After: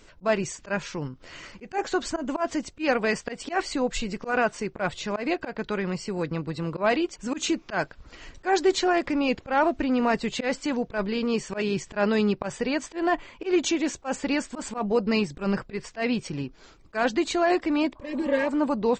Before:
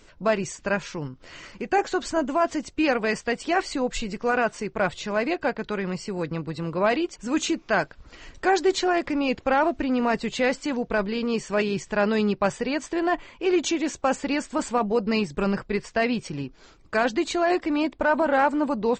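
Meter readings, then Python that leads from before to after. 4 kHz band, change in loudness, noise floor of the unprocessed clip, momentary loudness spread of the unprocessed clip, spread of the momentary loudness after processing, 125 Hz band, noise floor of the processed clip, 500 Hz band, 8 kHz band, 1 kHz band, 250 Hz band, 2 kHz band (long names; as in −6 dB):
−0.5 dB, −2.0 dB, −53 dBFS, 7 LU, 8 LU, −0.5 dB, −53 dBFS, −2.0 dB, 0.0 dB, −3.0 dB, −1.0 dB, −2.5 dB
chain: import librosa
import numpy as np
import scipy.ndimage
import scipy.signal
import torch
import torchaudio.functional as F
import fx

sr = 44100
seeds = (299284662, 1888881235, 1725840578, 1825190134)

y = fx.auto_swell(x, sr, attack_ms=111.0)
y = fx.spec_repair(y, sr, seeds[0], start_s=17.98, length_s=0.47, low_hz=600.0, high_hz=1600.0, source='both')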